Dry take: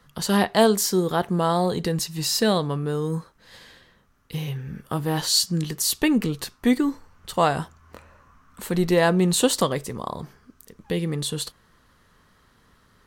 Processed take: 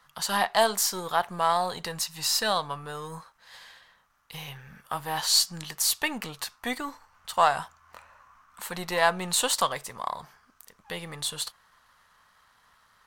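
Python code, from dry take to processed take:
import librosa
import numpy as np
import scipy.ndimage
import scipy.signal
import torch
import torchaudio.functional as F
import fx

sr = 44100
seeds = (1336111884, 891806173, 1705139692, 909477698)

y = np.where(x < 0.0, 10.0 ** (-3.0 / 20.0) * x, x)
y = fx.low_shelf_res(y, sr, hz=550.0, db=-13.0, q=1.5)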